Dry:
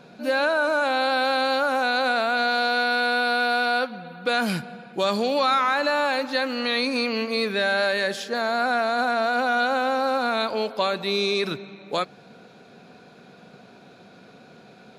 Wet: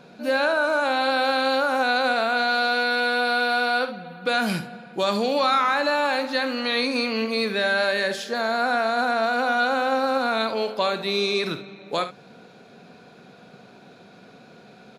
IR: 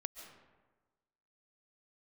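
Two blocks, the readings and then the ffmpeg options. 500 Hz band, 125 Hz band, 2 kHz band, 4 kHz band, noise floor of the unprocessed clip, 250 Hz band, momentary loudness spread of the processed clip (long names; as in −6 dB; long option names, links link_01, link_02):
+0.5 dB, +0.5 dB, +0.5 dB, +0.5 dB, −50 dBFS, +0.5 dB, 6 LU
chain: -af "aecho=1:1:49|72:0.237|0.211"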